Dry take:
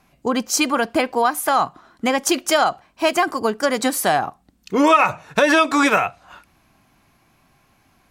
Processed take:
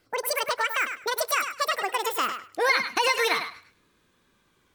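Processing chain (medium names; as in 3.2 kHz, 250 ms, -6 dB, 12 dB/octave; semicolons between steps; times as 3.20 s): gliding tape speed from 198% -> 144%; thinning echo 102 ms, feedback 19%, high-pass 420 Hz, level -8 dB; trim -8 dB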